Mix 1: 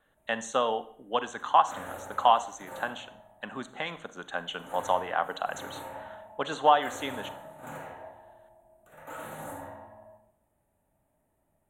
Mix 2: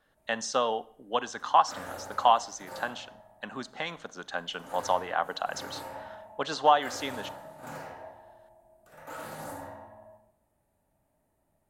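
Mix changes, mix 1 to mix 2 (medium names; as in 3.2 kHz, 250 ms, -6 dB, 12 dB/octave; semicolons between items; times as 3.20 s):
speech: send -6.0 dB; master: remove Butterworth band-stop 5 kHz, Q 1.8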